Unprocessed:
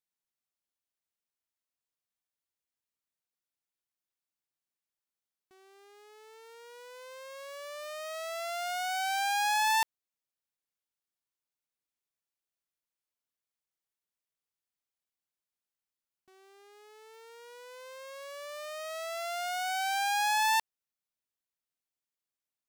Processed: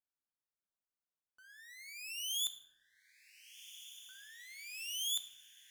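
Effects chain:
low shelf with overshoot 470 Hz +6 dB, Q 1.5
change of speed 3.98×
feedback delay with all-pass diffusion 1,523 ms, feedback 59%, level −13.5 dB
rectangular room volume 290 cubic metres, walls mixed, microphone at 0.41 metres
level −6.5 dB

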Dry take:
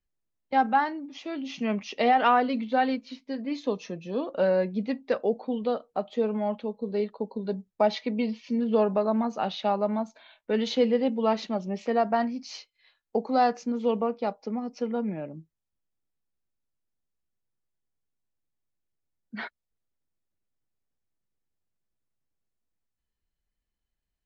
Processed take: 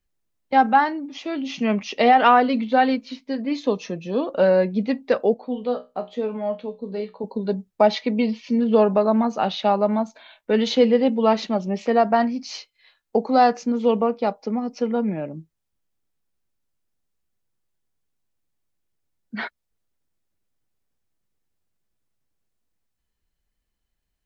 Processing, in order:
0:05.34–0:07.24: tuned comb filter 62 Hz, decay 0.24 s, harmonics all, mix 80%
level +6.5 dB

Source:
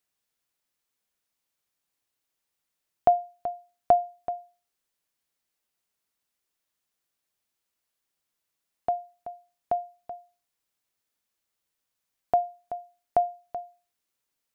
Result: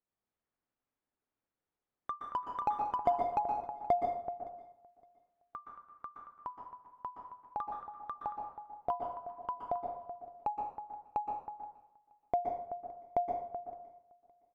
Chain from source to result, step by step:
Bessel low-pass filter 960 Hz, order 2
dynamic equaliser 700 Hz, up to −4 dB, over −33 dBFS, Q 0.76
in parallel at −5 dB: hard clipping −19.5 dBFS, distortion −14 dB
on the sum: repeating echo 565 ms, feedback 23%, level −23 dB
delay with pitch and tempo change per echo 89 ms, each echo +3 semitones, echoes 3
dense smooth reverb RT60 0.69 s, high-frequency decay 0.75×, pre-delay 110 ms, DRR 2.5 dB
level −7.5 dB

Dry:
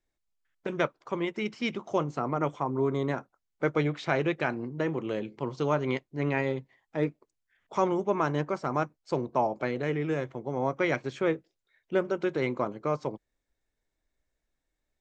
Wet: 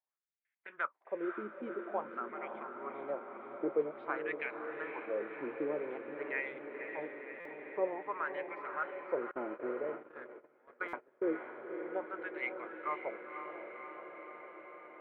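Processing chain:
high-pass filter 210 Hz 12 dB per octave
LFO wah 0.5 Hz 310–2,200 Hz, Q 4.5
low-pass filter 3,400 Hz 24 dB per octave
feedback delay with all-pass diffusion 529 ms, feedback 73%, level −7 dB
0:09.31–0:11.34: noise gate −40 dBFS, range −23 dB
buffer that repeats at 0:07.40/0:10.88, samples 256, times 8

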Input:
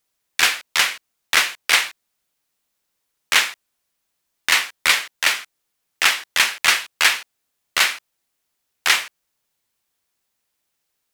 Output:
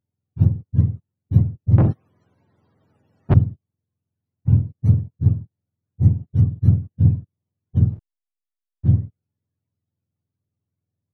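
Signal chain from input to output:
frequency axis turned over on the octave scale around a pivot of 500 Hz
0:01.78–0:03.34: mid-hump overdrive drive 39 dB, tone 2,200 Hz, clips at −3 dBFS
0:07.92–0:08.89: slack as between gear wheels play −33.5 dBFS
level −3 dB

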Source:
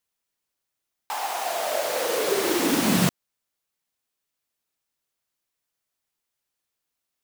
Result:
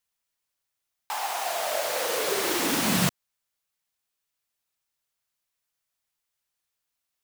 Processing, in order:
parametric band 310 Hz −6.5 dB 1.8 octaves

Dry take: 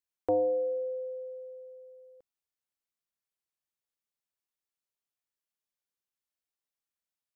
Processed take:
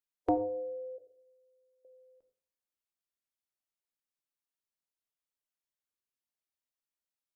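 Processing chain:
noise reduction from a noise print of the clip's start 9 dB
0:00.98–0:01.85: phaser with its sweep stopped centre 490 Hz, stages 6
on a send at −9.5 dB: convolution reverb RT60 0.50 s, pre-delay 3 ms
on the sum: every ending faded ahead of time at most 450 dB per second
level +4 dB

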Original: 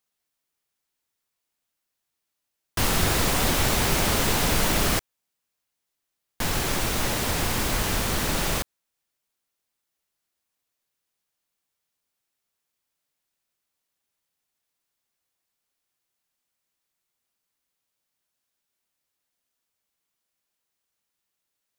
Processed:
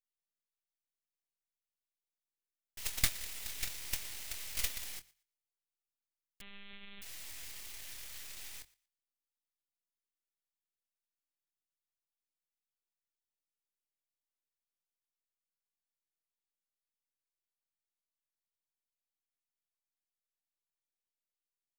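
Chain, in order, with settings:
elliptic band-stop filter 110–1,900 Hz
mains-hum notches 50/100 Hz
noise gate −19 dBFS, range −29 dB
tilt shelving filter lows −8 dB
half-wave rectification
double-tracking delay 25 ms −11 dB
feedback echo with a high-pass in the loop 118 ms, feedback 18%, level −21.5 dB
0:06.41–0:07.02: one-pitch LPC vocoder at 8 kHz 200 Hz
level +7.5 dB

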